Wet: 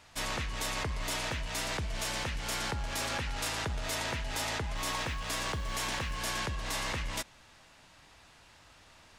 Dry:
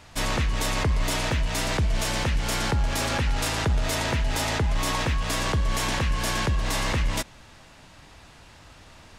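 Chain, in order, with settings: low shelf 490 Hz -7 dB; 4.77–6.18 short-mantissa float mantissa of 4-bit; gain -6 dB

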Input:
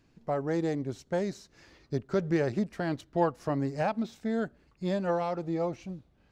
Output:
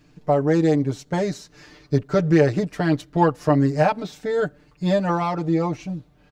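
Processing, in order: comb 6.7 ms, depth 89%; gain +7.5 dB

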